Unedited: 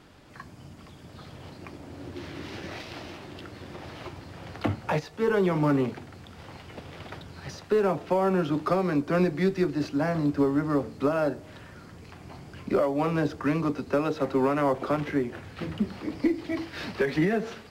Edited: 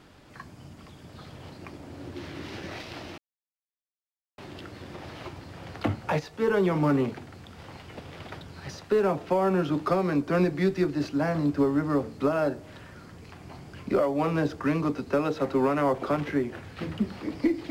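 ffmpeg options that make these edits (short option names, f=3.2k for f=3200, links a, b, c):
-filter_complex "[0:a]asplit=2[a][b];[a]atrim=end=3.18,asetpts=PTS-STARTPTS,afade=t=out:st=3.176:d=0.004:c=hsin,apad=pad_dur=1.2[c];[b]atrim=start=3.18,asetpts=PTS-STARTPTS,afade=t=in:d=0.004:c=hsin[d];[c][d]concat=n=2:v=0:a=1"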